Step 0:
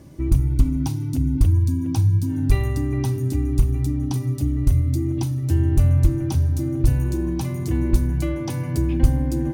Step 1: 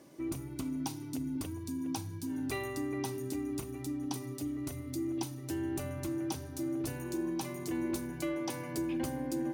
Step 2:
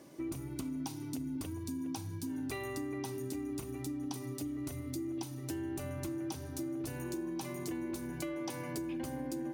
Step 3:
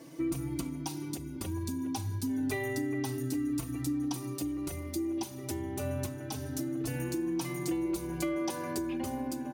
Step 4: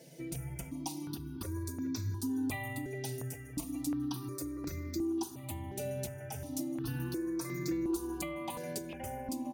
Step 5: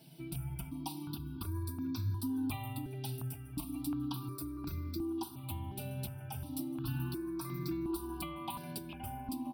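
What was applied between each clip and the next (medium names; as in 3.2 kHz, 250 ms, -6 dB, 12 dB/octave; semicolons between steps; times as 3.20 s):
high-pass 330 Hz 12 dB/octave; trim -5 dB
compression, threshold -37 dBFS, peak gain reduction 7 dB; trim +1.5 dB
endless flanger 4 ms +0.28 Hz; trim +8 dB
stepped phaser 2.8 Hz 300–3000 Hz
static phaser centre 1.9 kHz, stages 6; trim +2 dB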